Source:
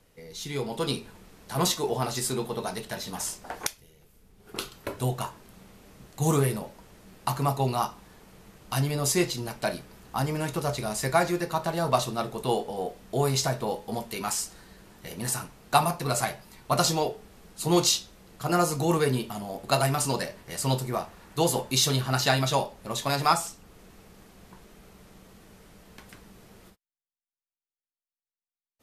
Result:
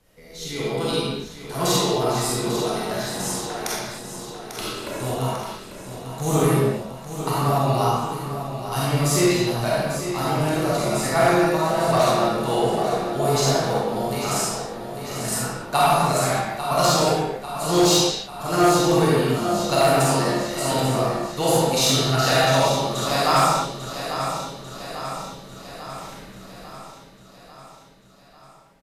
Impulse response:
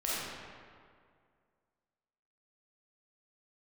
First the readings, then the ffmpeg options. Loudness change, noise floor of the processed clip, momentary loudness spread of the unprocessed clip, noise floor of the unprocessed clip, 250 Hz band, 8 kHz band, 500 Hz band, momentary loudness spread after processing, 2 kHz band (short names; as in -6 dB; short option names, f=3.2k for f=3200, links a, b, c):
+6.5 dB, -48 dBFS, 11 LU, under -85 dBFS, +7.5 dB, +4.5 dB, +8.5 dB, 16 LU, +7.0 dB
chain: -filter_complex "[0:a]aecho=1:1:845|1690|2535|3380|4225|5070|5915:0.316|0.183|0.106|0.0617|0.0358|0.0208|0.012[a];[1:a]atrim=start_sample=2205,afade=t=out:st=0.37:d=0.01,atrim=end_sample=16758[b];[a][b]afir=irnorm=-1:irlink=0,volume=11dB,asoftclip=hard,volume=-11dB"